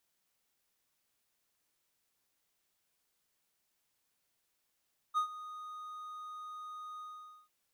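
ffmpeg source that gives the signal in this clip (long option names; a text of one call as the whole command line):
ffmpeg -f lavfi -i "aevalsrc='0.0596*(1-4*abs(mod(1240*t+0.25,1)-0.5))':duration=2.344:sample_rate=44100,afade=type=in:duration=0.034,afade=type=out:start_time=0.034:duration=0.096:silence=0.15,afade=type=out:start_time=1.86:duration=0.484" out.wav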